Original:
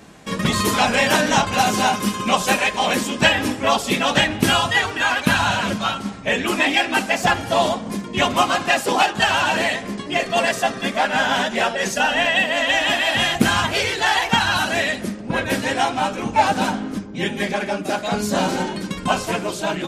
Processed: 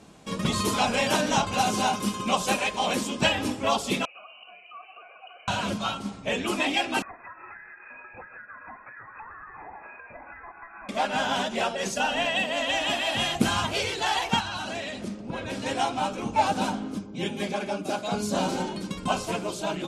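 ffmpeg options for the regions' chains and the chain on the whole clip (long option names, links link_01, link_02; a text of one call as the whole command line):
ffmpeg -i in.wav -filter_complex "[0:a]asettb=1/sr,asplit=3[link_01][link_02][link_03];[link_01]atrim=end=4.054[link_04];[link_02]atrim=start=4.05:end=5.48,asetpts=PTS-STARTPTS,afade=type=in:duration=0.004:curve=qsin,afade=type=out:start_time=1.426:duration=0.004:curve=qsin,acompressor=threshold=-23dB:ratio=8:attack=3.2:release=140:knee=1:detection=peak,lowpass=frequency=2600:width_type=q:width=0.5098,lowpass=frequency=2600:width_type=q:width=0.6013,lowpass=frequency=2600:width_type=q:width=0.9,lowpass=frequency=2600:width_type=q:width=2.563,afreqshift=-3100,asplit=3[link_05][link_06][link_07];[link_05]bandpass=frequency=730:width_type=q:width=8,volume=0dB[link_08];[link_06]bandpass=frequency=1090:width_type=q:width=8,volume=-6dB[link_09];[link_07]bandpass=frequency=2440:width_type=q:width=8,volume=-9dB[link_10];[link_08][link_09][link_10]amix=inputs=3:normalize=0[link_11];[link_03]atrim=start=5.476[link_12];[link_04][link_11]acrossfade=duration=0.004:curve1=hsin:curve2=qsin[link_13];[link_13][link_12]acrossfade=duration=0.004:curve1=qsin:curve2=hsin,asettb=1/sr,asplit=3[link_14][link_15][link_16];[link_14]atrim=end=7.024[link_17];[link_15]atrim=start=7.02:end=10.89,asetpts=PTS-STARTPTS,afade=type=in:duration=0.004:curve=qsin,afade=type=out:start_time=3.866:duration=0.004:curve=qsin,lowshelf=frequency=720:width_type=q:width=3:gain=-12,acompressor=threshold=-29dB:ratio=20:attack=3.2:release=140:knee=1:detection=peak,lowpass=frequency=2300:width_type=q:width=0.5098,lowpass=frequency=2300:width_type=q:width=0.6013,lowpass=frequency=2300:width_type=q:width=0.9,lowpass=frequency=2300:width_type=q:width=2.563,afreqshift=-2700[link_18];[link_16]atrim=start=10.886[link_19];[link_17][link_18]acrossfade=duration=0.004:curve1=hsin:curve2=qsin[link_20];[link_20][link_19]acrossfade=duration=0.004:curve1=qsin:curve2=hsin,asettb=1/sr,asplit=3[link_21][link_22][link_23];[link_21]atrim=end=14.404[link_24];[link_22]atrim=start=14.4:end=15.66,asetpts=PTS-STARTPTS,afade=type=in:duration=0.004:curve=qsin,afade=type=out:start_time=1.256:duration=0.004:curve=qsin,lowpass=8200,acompressor=threshold=-22dB:ratio=4:attack=3.2:release=140:knee=1:detection=peak[link_25];[link_23]atrim=start=15.656[link_26];[link_24][link_25]acrossfade=duration=0.004:curve1=hsin:curve2=qsin[link_27];[link_27][link_26]acrossfade=duration=0.004:curve1=qsin:curve2=hsin,asettb=1/sr,asplit=3[link_28][link_29][link_30];[link_28]atrim=end=16.904[link_31];[link_29]atrim=start=16.9:end=18.35,asetpts=PTS-STARTPTS,afade=type=in:duration=0.004:curve=qsin,afade=type=out:start_time=1.446:duration=0.004:curve=qsin,highpass=60,bandreject=frequency=1900:width=13[link_32];[link_30]atrim=start=18.346[link_33];[link_31][link_32]acrossfade=duration=0.004:curve1=hsin:curve2=qsin[link_34];[link_34][link_33]acrossfade=duration=0.004:curve1=qsin:curve2=hsin,lowpass=frequency=12000:width=0.5412,lowpass=frequency=12000:width=1.3066,equalizer=frequency=1800:width_type=o:width=0.5:gain=-7.5,volume=-6dB" out.wav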